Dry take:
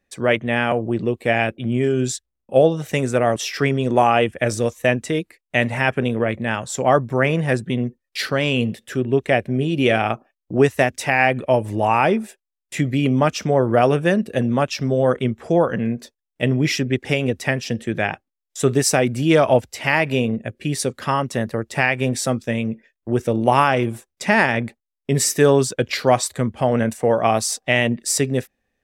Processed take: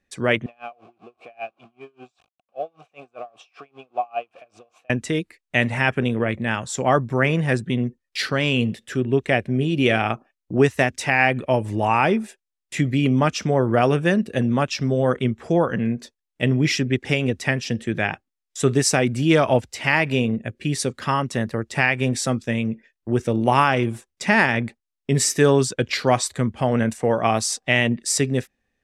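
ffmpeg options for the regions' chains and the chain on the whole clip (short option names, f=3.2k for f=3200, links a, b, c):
-filter_complex "[0:a]asettb=1/sr,asplit=3[a][b][c];[a]atrim=end=0.464[d];[b]atrim=start=0.46:end=4.9,asetpts=PTS-STARTPTS,afade=t=in:d=0.004:c=qsin,afade=t=out:st=4.436:d=0.004:c=qsin,aeval=exprs='val(0)+0.5*0.0501*sgn(val(0))':c=same,asplit=3[e][f][g];[e]bandpass=f=730:t=q:w=8,volume=0dB[h];[f]bandpass=f=1.09k:t=q:w=8,volume=-6dB[i];[g]bandpass=f=2.44k:t=q:w=8,volume=-9dB[j];[h][i][j]amix=inputs=3:normalize=0,aeval=exprs='val(0)*pow(10,-30*(0.5-0.5*cos(2*PI*5.1*n/s))/20)':c=same[k];[c]atrim=start=4.896[l];[d][k]acrossfade=d=0.004:c1=hsin:c2=qsin[m];[m][l]acrossfade=d=0.004:c1=qsin:c2=hsin,lowpass=9.5k,equalizer=f=590:w=1.4:g=-4"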